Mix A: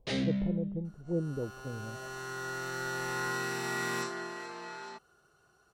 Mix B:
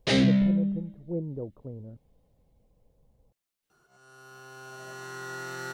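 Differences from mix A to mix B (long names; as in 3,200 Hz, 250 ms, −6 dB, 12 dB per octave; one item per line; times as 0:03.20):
first sound +10.0 dB
second sound: entry +2.85 s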